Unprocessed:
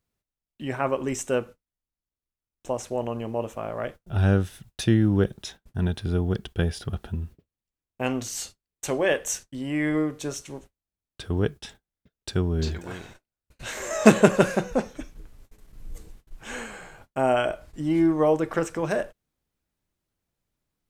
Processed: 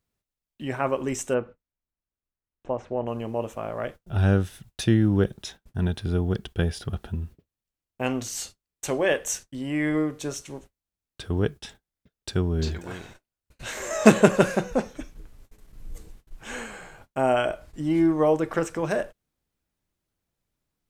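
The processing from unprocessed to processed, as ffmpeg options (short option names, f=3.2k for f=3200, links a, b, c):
-filter_complex "[0:a]asplit=3[a][b][c];[a]afade=t=out:st=1.33:d=0.02[d];[b]lowpass=2k,afade=t=in:st=1.33:d=0.02,afade=t=out:st=3.06:d=0.02[e];[c]afade=t=in:st=3.06:d=0.02[f];[d][e][f]amix=inputs=3:normalize=0"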